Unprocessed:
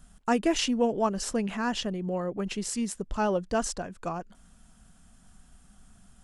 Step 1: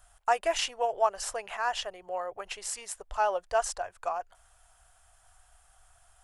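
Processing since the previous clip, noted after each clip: FFT filter 110 Hz 0 dB, 160 Hz -22 dB, 230 Hz -28 dB, 370 Hz -7 dB, 710 Hz +12 dB, 1.1 kHz +9 dB, 2.2 kHz +8 dB, 4 kHz +5 dB, 6.1 kHz +5 dB, 11 kHz +9 dB; trim -7.5 dB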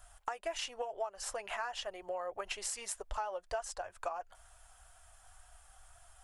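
compression 16:1, threshold -36 dBFS, peak gain reduction 18 dB; flange 2 Hz, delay 2.9 ms, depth 1 ms, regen -51%; trim +5.5 dB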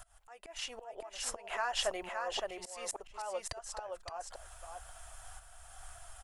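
slow attack 436 ms; feedback comb 670 Hz, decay 0.16 s, mix 30%; delay 567 ms -4.5 dB; trim +10.5 dB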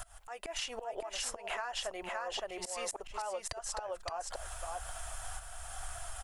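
compression 10:1, threshold -44 dBFS, peak gain reduction 16 dB; trim +9 dB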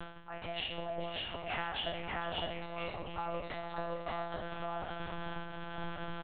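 spectral sustain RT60 0.69 s; monotone LPC vocoder at 8 kHz 170 Hz; delay 453 ms -14.5 dB; trim -1.5 dB

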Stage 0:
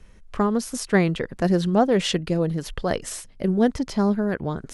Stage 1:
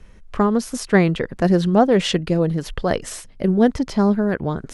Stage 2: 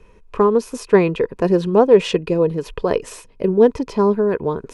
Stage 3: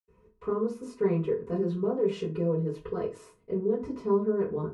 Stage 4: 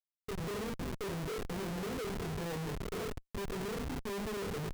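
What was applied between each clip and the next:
treble shelf 4.9 kHz -5 dB; trim +4 dB
small resonant body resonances 440/970/2500 Hz, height 14 dB, ringing for 25 ms; trim -5 dB
peak limiter -11.5 dBFS, peak gain reduction 10 dB; reverberation RT60 0.30 s, pre-delay 76 ms; trim +6 dB
reverse echo 728 ms -11.5 dB; Schmitt trigger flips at -35 dBFS; trim -8.5 dB

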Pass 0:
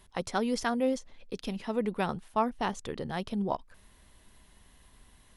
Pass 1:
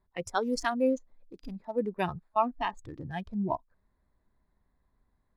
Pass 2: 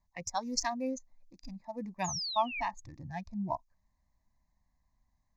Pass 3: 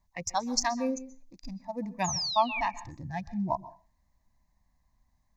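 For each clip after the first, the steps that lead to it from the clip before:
local Wiener filter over 15 samples; spectral noise reduction 16 dB; trim +2.5 dB
peaking EQ 6.5 kHz +14 dB 0.72 oct; painted sound fall, 2.04–2.61 s, 2.2–7.1 kHz -34 dBFS; static phaser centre 2.1 kHz, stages 8; trim -2 dB
reverberation RT60 0.35 s, pre-delay 117 ms, DRR 17 dB; trim +4.5 dB

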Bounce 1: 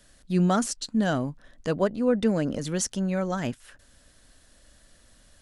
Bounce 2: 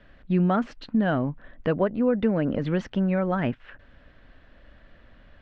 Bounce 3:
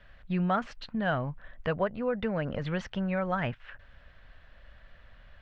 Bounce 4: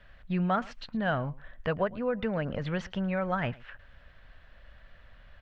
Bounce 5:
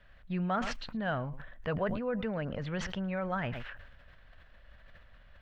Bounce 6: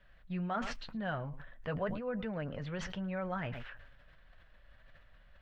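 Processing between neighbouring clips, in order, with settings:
low-pass 2.7 kHz 24 dB/octave; compression 2.5:1, threshold -27 dBFS, peak gain reduction 7 dB; trim +6 dB
peaking EQ 290 Hz -14 dB 1.3 oct
delay 110 ms -22.5 dB
decay stretcher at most 41 dB/s; trim -4.5 dB
flange 0.93 Hz, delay 5.2 ms, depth 2.8 ms, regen -53%

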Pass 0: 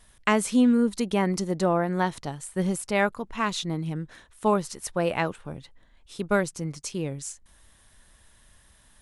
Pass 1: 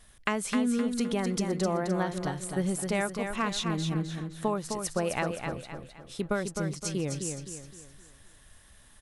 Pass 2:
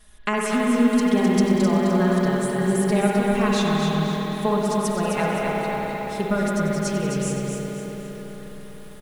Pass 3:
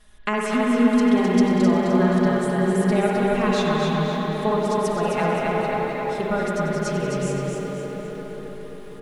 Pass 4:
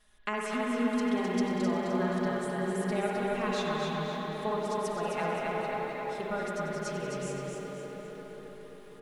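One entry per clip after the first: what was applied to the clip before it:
compression, threshold -25 dBFS, peak gain reduction 9 dB; band-stop 950 Hz, Q 14; feedback delay 259 ms, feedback 39%, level -6 dB
comb 4.8 ms, depth 89%; reverberation RT60 5.0 s, pre-delay 55 ms, DRR -3 dB; bit-crushed delay 94 ms, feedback 80%, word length 7-bit, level -12 dB
treble shelf 8.5 kHz -11.5 dB; hum notches 50/100/150/200 Hz; tape echo 268 ms, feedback 72%, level -5 dB, low-pass 2.1 kHz
bass shelf 310 Hz -6.5 dB; trim -8 dB

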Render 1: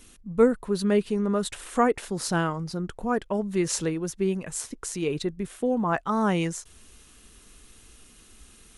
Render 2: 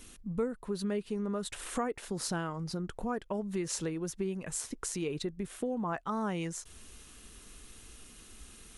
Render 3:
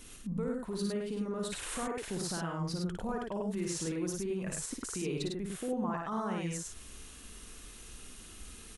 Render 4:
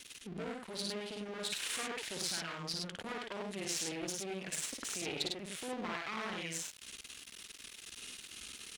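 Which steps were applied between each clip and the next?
compression 3:1, threshold -34 dBFS, peak gain reduction 15 dB
peak limiter -29.5 dBFS, peak gain reduction 9.5 dB; on a send: loudspeakers at several distances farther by 19 m -4 dB, 35 m -3 dB
half-wave rectifier; frequency weighting D; trim -1 dB

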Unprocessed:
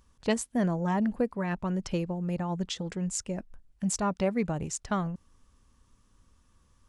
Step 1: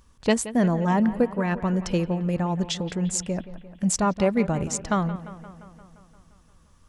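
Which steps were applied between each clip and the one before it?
bucket-brigade echo 174 ms, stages 4096, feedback 66%, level -15 dB; trim +6 dB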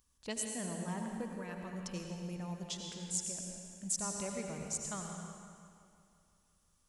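pre-emphasis filter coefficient 0.8; on a send at -2 dB: reverberation RT60 2.0 s, pre-delay 72 ms; on the sum: trim -7.5 dB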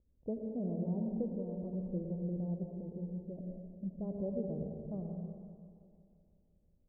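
steep low-pass 600 Hz 36 dB/octave; trim +5 dB

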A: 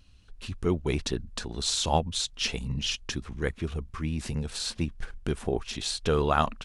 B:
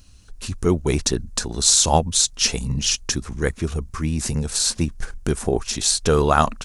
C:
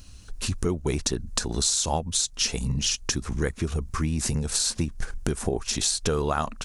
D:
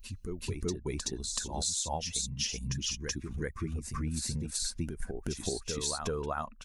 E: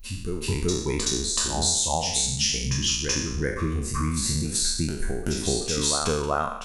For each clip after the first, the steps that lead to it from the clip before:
FFT filter 1.5 kHz 0 dB, 3.2 kHz -4 dB, 6.3 kHz +9 dB; trim +7.5 dB
compression 5:1, threshold -26 dBFS, peak gain reduction 14 dB; trim +3 dB
expander on every frequency bin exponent 1.5; reverse echo 379 ms -5 dB; trim -6.5 dB
spectral sustain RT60 0.80 s; trim +6.5 dB

